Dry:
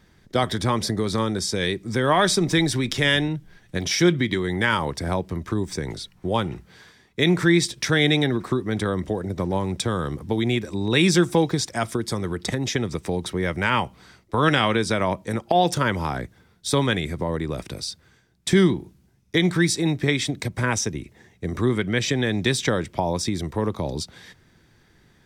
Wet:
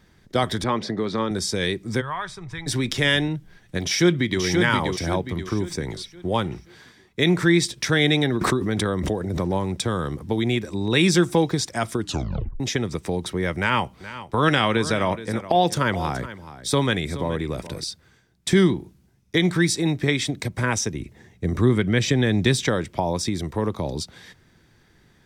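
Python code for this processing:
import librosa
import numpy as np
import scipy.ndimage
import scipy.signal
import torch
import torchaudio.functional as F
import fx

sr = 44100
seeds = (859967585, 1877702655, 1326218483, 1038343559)

y = fx.bandpass_edges(x, sr, low_hz=160.0, high_hz=3600.0, at=(0.64, 1.31))
y = fx.curve_eq(y, sr, hz=(110.0, 240.0, 430.0, 620.0, 960.0, 2300.0, 4600.0, 8900.0, 13000.0), db=(0, -28, -18, -19, -7, -11, -19, -20, -26), at=(2.0, 2.66), fade=0.02)
y = fx.echo_throw(y, sr, start_s=3.83, length_s=0.6, ms=530, feedback_pct=40, wet_db=-4.0)
y = fx.pre_swell(y, sr, db_per_s=32.0, at=(8.41, 9.63))
y = fx.echo_single(y, sr, ms=424, db=-14.5, at=(13.58, 17.84))
y = fx.low_shelf(y, sr, hz=270.0, db=6.0, at=(21.0, 22.64))
y = fx.edit(y, sr, fx.tape_stop(start_s=11.98, length_s=0.62), tone=tone)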